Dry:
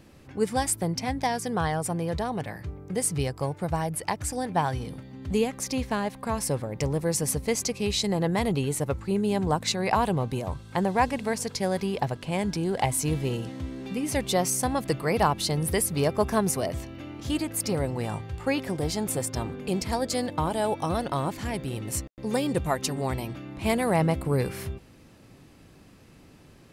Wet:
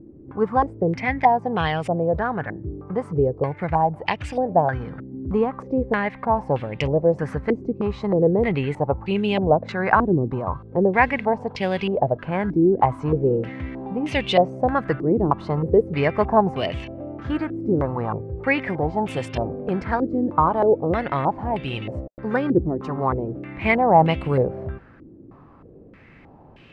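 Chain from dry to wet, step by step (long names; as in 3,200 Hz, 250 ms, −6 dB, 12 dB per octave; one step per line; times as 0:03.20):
low-pass on a step sequencer 3.2 Hz 340–2,800 Hz
level +3 dB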